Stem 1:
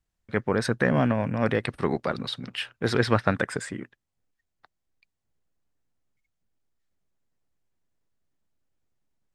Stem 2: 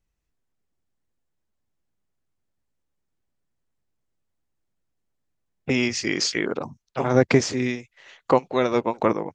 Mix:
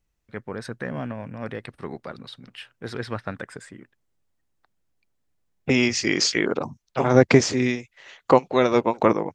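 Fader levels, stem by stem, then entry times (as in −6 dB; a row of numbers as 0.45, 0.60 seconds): −8.5, +2.5 decibels; 0.00, 0.00 seconds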